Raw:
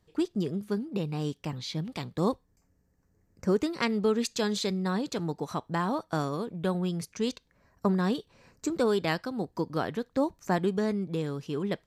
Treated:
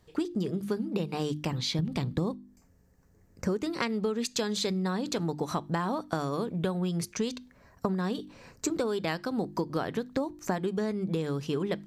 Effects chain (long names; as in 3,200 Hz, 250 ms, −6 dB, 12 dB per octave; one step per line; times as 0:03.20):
0:01.79–0:02.31: low-shelf EQ 330 Hz +11.5 dB
mains-hum notches 50/100/150/200/250/300/350 Hz
downward compressor 12 to 1, threshold −33 dBFS, peak gain reduction 17.5 dB
level +7 dB